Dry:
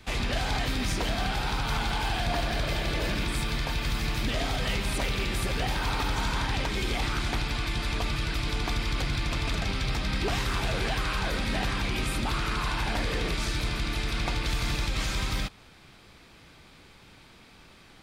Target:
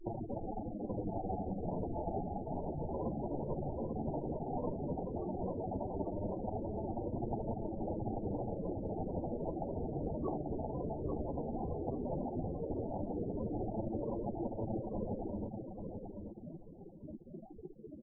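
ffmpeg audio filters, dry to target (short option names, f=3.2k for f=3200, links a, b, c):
-filter_complex "[0:a]alimiter=level_in=8dB:limit=-24dB:level=0:latency=1:release=53,volume=-8dB,acrossover=split=150 5100:gain=0.126 1 0.112[a][b][c];[a][b][c]amix=inputs=3:normalize=0,asplit=2[d][e];[e]aeval=exprs='(mod(158*val(0)+1,2)-1)/158':c=same,volume=-5dB[f];[d][f]amix=inputs=2:normalize=0,highshelf=f=4.7k:g=11.5,acompressor=threshold=-41dB:ratio=10,acrusher=samples=29:mix=1:aa=0.000001,afftfilt=real='re*gte(hypot(re,im),0.02)':imag='im*gte(hypot(re,im),0.02)':win_size=1024:overlap=0.75,flanger=delay=8.5:depth=5.5:regen=-11:speed=0.14:shape=triangular,asplit=2[g][h];[h]aecho=0:1:838|1676|2514:0.501|0.105|0.0221[i];[g][i]amix=inputs=2:normalize=0,volume=12.5dB" -ar 22050 -c:a aac -b:a 24k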